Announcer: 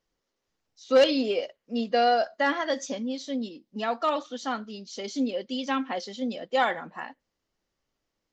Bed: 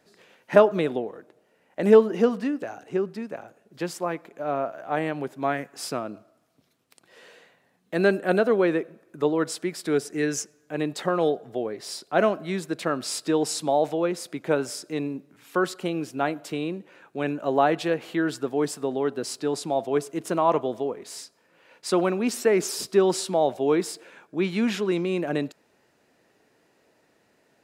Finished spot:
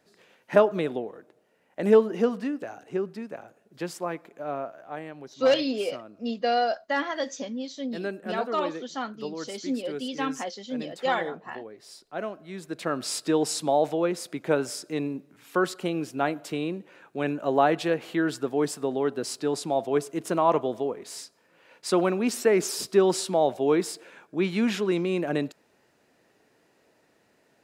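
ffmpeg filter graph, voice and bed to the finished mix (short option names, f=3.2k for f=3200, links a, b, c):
-filter_complex "[0:a]adelay=4500,volume=-2dB[a];[1:a]volume=8.5dB,afade=t=out:st=4.3:d=0.74:silence=0.354813,afade=t=in:st=12.48:d=0.57:silence=0.266073[b];[a][b]amix=inputs=2:normalize=0"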